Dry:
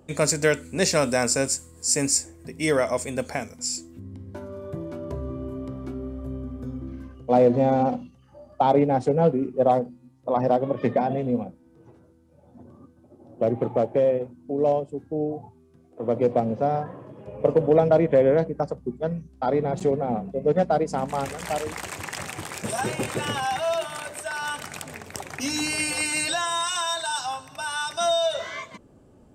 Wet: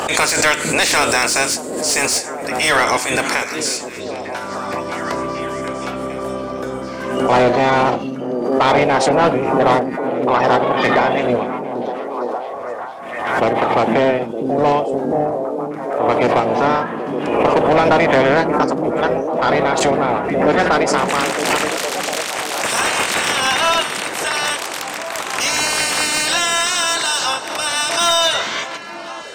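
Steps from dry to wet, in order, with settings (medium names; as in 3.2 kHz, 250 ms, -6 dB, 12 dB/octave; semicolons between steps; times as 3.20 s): spectral peaks clipped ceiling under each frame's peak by 19 dB; overdrive pedal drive 21 dB, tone 4.2 kHz, clips at -3.5 dBFS; repeats whose band climbs or falls 458 ms, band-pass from 220 Hz, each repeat 0.7 oct, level -2 dB; swell ahead of each attack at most 44 dB/s; trim -1 dB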